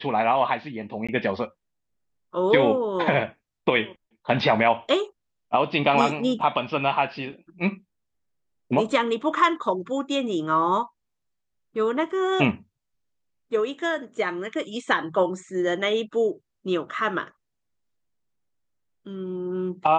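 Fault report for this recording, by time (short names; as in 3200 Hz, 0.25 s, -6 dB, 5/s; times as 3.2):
1.07–1.09 gap 16 ms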